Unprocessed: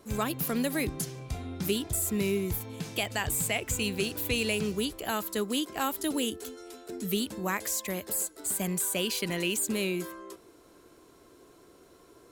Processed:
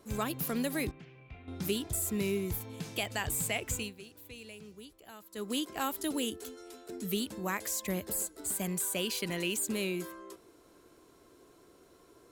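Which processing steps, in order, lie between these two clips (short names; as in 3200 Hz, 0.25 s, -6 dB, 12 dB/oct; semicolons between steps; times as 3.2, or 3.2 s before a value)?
0.91–1.48 ladder low-pass 2800 Hz, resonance 60%; 3.74–5.51 dip -16 dB, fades 0.20 s; 7.82–8.51 low shelf 270 Hz +8.5 dB; gain -3.5 dB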